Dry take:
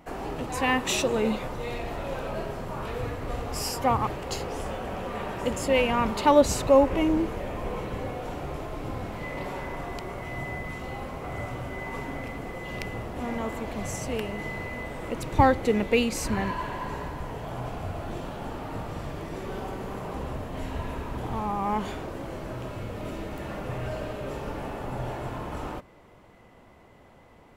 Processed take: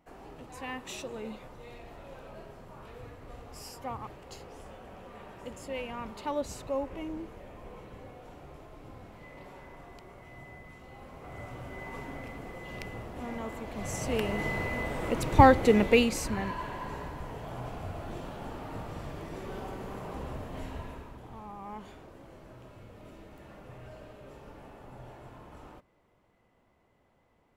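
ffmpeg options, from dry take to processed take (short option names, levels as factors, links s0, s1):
-af "volume=1.26,afade=t=in:st=10.88:d=0.94:silence=0.398107,afade=t=in:st=13.71:d=0.61:silence=0.375837,afade=t=out:st=15.85:d=0.45:silence=0.446684,afade=t=out:st=20.56:d=0.63:silence=0.316228"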